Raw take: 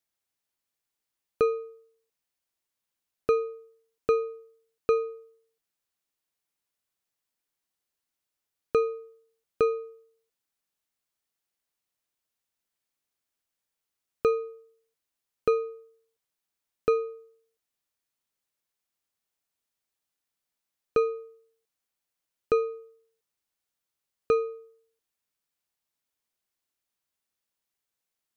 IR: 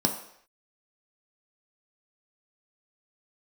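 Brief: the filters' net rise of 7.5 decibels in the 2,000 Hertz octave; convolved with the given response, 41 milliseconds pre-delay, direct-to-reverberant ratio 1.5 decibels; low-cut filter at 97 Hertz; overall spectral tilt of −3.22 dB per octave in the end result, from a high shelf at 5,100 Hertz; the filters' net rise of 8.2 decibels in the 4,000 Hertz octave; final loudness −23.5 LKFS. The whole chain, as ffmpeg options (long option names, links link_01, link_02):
-filter_complex "[0:a]highpass=97,equalizer=frequency=2000:width_type=o:gain=6.5,equalizer=frequency=4000:width_type=o:gain=4.5,highshelf=frequency=5100:gain=7,asplit=2[link_01][link_02];[1:a]atrim=start_sample=2205,adelay=41[link_03];[link_02][link_03]afir=irnorm=-1:irlink=0,volume=-11.5dB[link_04];[link_01][link_04]amix=inputs=2:normalize=0,volume=4dB"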